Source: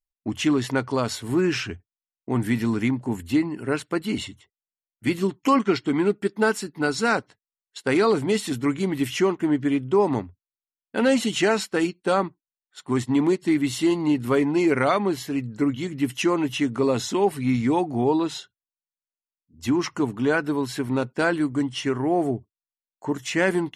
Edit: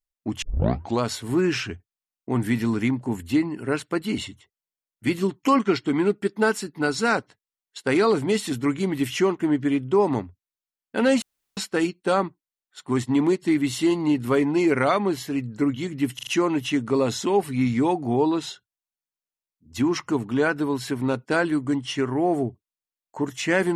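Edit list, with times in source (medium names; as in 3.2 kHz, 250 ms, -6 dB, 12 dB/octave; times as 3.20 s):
0.42 s: tape start 0.60 s
11.22–11.57 s: room tone
16.15 s: stutter 0.04 s, 4 plays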